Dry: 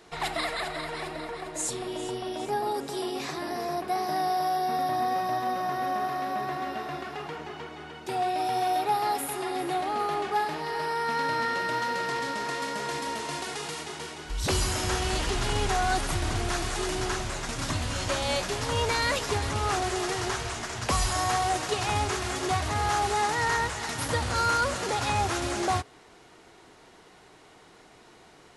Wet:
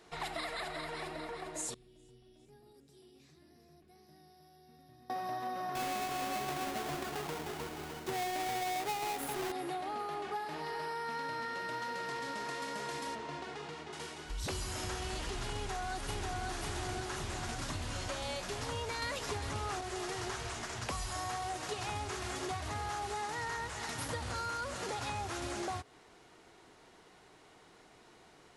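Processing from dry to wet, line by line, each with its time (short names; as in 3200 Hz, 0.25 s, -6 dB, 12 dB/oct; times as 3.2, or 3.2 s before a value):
1.74–5.1 passive tone stack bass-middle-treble 10-0-1
5.75–9.52 half-waves squared off
13.15–13.93 tape spacing loss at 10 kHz 20 dB
15.54–16.46 echo throw 0.54 s, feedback 50%, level 0 dB
19.02–19.81 gain +5 dB
whole clip: compressor, threshold -29 dBFS; gain -6 dB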